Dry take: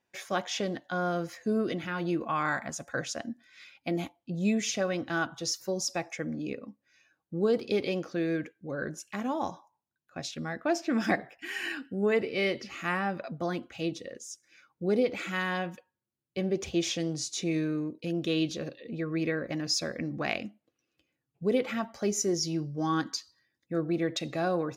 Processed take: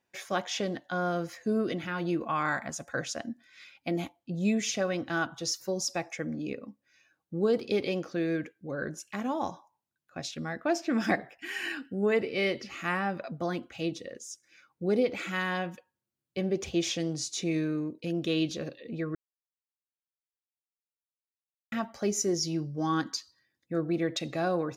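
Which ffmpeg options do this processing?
-filter_complex "[0:a]asplit=3[a][b][c];[a]atrim=end=19.15,asetpts=PTS-STARTPTS,afade=t=out:st=19.146:d=0.004:c=hsin[d];[b]atrim=start=19.15:end=21.72,asetpts=PTS-STARTPTS,volume=0[e];[c]atrim=start=21.72,asetpts=PTS-STARTPTS,afade=t=in:d=0.004:c=hsin[f];[d][e][f]concat=n=3:v=0:a=1"

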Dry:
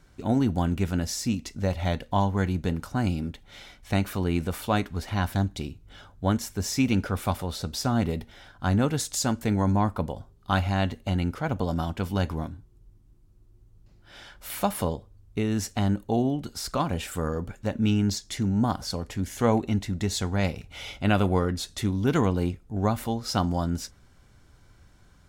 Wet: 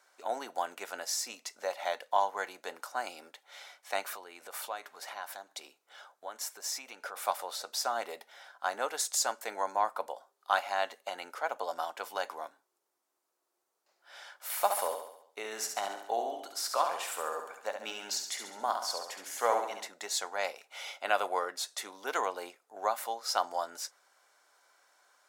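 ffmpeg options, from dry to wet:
-filter_complex "[0:a]asettb=1/sr,asplit=3[a][b][c];[a]atrim=end=4.144[d];[b]atrim=start=4.14:end=7.16,asetpts=PTS-STARTPTS,afade=t=in:d=0.004:c=qsin,afade=t=out:st=3.016:d=0.004:c=qsin,acompressor=threshold=-30dB:ratio=4:attack=3.2:release=140:knee=1:detection=peak[e];[c]atrim=start=7.156[f];[d][e]acrossfade=d=0.004:c1=hsin:c2=qsin[g];[g][f]acrossfade=d=0.004:c1=qsin:c2=hsin,asettb=1/sr,asplit=3[h][i][j];[h]atrim=end=14.334[k];[i]atrim=start=14.33:end=19.88,asetpts=PTS-STARTPTS,afade=t=in:d=0.004:c=qsin,afade=t=out:st=5.546:d=0.004:c=qsin,aecho=1:1:69|138|207|276|345|414:0.473|0.246|0.128|0.0665|0.0346|0.018,atrim=end_sample=244755[l];[j]atrim=start=19.876[m];[k][l]acrossfade=d=0.004:c1=hsin:c2=qsin[n];[n][m]acrossfade=d=0.004:c1=qsin:c2=hsin,highpass=f=590:w=0.5412,highpass=f=590:w=1.3066,equalizer=f=3k:w=1.3:g=-5"

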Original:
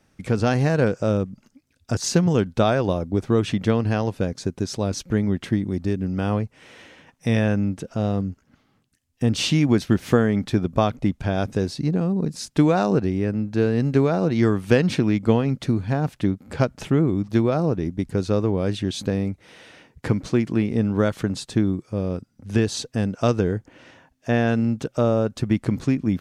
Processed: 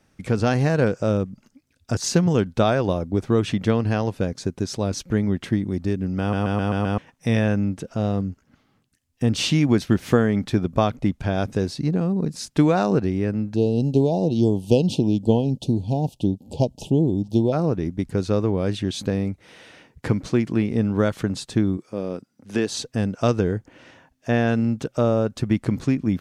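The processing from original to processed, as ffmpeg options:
-filter_complex "[0:a]asplit=3[a][b][c];[a]afade=t=out:st=13.54:d=0.02[d];[b]asuperstop=centerf=1600:order=12:qfactor=0.85,afade=t=in:st=13.54:d=0.02,afade=t=out:st=17.52:d=0.02[e];[c]afade=t=in:st=17.52:d=0.02[f];[d][e][f]amix=inputs=3:normalize=0,asettb=1/sr,asplit=3[g][h][i];[g]atrim=end=21.774[j];[h]atrim=start=21.77:end=22.7,asetpts=PTS-STARTPTS,afade=t=in:d=0.004:c=qsin,afade=t=out:st=0.926:d=0.004:c=qsin,highpass=220[k];[i]atrim=start=22.696[l];[j][k]acrossfade=d=0.004:c1=hsin:c2=qsin[m];[m][l]acrossfade=d=0.004:c1=qsin:c2=hsin,asplit=7[n][o][p][q][r][s][t];[n]atrim=end=6.332[u];[o]atrim=start=6.198:end=6.332[v];[p]atrim=start=6.198:end=6.332[w];[q]atrim=start=6.198:end=6.332[x];[r]atrim=start=6.198:end=6.332[y];[s]atrim=start=6.198:end=6.332[z];[t]atrim=start=6.978[aa];[u][v]acrossfade=d=0.004:c1=hsin:c2=hsin[ab];[ab][w]acrossfade=d=0.004:c1=hsin:c2=hsin[ac];[ac][x]acrossfade=d=0.004:c1=hsin:c2=hsin[ad];[ad][y]acrossfade=d=0.004:c1=hsin:c2=hsin[ae];[ae][z]acrossfade=d=0.004:c1=hsin:c2=hsin[af];[af][aa]acrossfade=d=0.004:c1=hsin:c2=hsin"

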